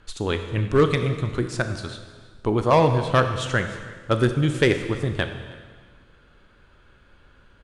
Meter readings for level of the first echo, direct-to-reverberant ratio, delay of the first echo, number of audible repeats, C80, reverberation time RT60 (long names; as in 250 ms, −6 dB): −22.5 dB, 7.0 dB, 316 ms, 1, 9.5 dB, 1.6 s